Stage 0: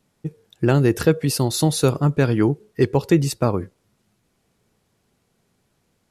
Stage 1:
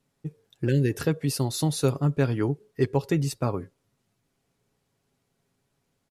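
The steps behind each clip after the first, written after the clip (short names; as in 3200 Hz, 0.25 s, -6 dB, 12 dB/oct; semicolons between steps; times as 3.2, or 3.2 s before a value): spectral repair 0.7–0.9, 580–1500 Hz after; comb 7.3 ms, depth 37%; gain -7.5 dB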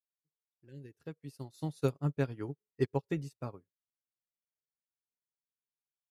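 opening faded in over 1.74 s; upward expander 2.5:1, over -41 dBFS; gain -5.5 dB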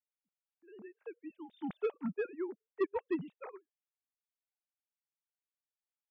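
sine-wave speech; soft clip -25 dBFS, distortion -10 dB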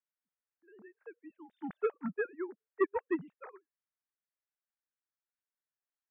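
synth low-pass 1700 Hz, resonance Q 2.3; upward expander 1.5:1, over -42 dBFS; gain +3 dB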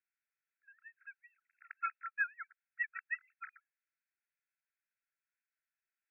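brick-wall FIR band-pass 1300–2700 Hz; gain +7 dB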